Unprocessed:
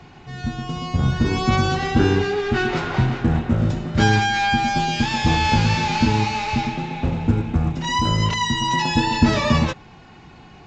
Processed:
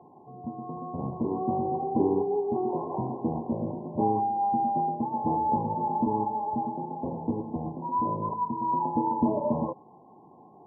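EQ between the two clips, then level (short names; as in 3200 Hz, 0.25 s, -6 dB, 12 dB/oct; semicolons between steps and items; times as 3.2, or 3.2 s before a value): HPF 300 Hz 12 dB/oct; brick-wall FIR low-pass 1100 Hz; air absorption 460 m; -2.0 dB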